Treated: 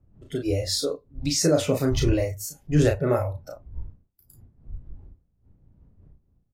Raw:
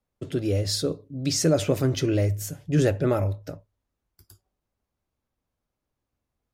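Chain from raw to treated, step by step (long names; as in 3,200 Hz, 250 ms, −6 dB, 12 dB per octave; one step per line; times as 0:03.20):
wind on the microphone 100 Hz −36 dBFS
noise reduction from a noise print of the clip's start 15 dB
double-tracking delay 34 ms −4 dB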